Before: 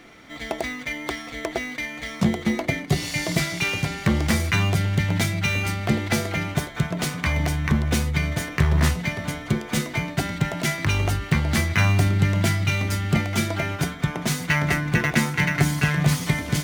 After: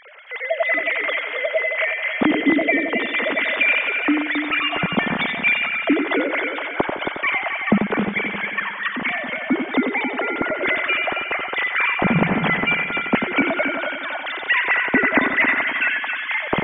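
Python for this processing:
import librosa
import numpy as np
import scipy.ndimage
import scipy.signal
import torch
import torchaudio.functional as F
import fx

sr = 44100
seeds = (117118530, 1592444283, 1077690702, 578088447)

p1 = fx.sine_speech(x, sr)
y = p1 + fx.echo_heads(p1, sr, ms=90, heads='first and third', feedback_pct=48, wet_db=-7.0, dry=0)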